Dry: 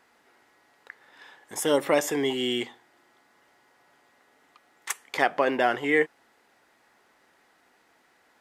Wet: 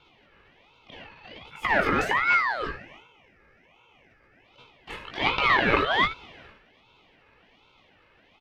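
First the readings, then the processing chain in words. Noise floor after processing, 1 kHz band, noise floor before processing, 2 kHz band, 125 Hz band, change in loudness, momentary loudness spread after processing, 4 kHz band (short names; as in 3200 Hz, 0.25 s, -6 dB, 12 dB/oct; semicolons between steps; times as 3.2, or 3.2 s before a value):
-61 dBFS, +4.5 dB, -64 dBFS, +5.5 dB, +6.5 dB, +2.5 dB, 20 LU, +2.5 dB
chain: spectral gain 1.52–4.45, 1700–3800 Hz -11 dB; low shelf 240 Hz -12 dB; comb 2.3 ms, depth 71%; transient shaper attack -10 dB, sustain +12 dB; in parallel at -9 dB: wrapped overs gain 21.5 dB; on the sum: air absorption 380 m; on a send: early reflections 18 ms -5.5 dB, 77 ms -14 dB; on the sum: ring modulator with a swept carrier 1300 Hz, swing 40%, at 1.3 Hz; gain +4.5 dB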